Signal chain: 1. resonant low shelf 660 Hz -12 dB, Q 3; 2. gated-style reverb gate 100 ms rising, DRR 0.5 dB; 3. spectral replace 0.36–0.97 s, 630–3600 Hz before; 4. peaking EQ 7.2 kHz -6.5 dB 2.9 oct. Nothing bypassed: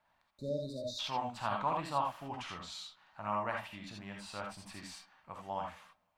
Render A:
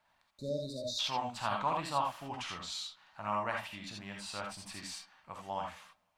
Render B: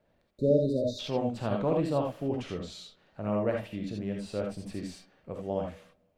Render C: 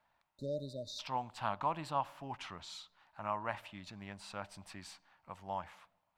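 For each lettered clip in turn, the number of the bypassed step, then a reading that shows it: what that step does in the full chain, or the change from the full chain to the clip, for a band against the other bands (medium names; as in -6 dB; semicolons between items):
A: 4, loudness change +1.5 LU; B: 1, 250 Hz band +14.5 dB; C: 2, crest factor change +2.5 dB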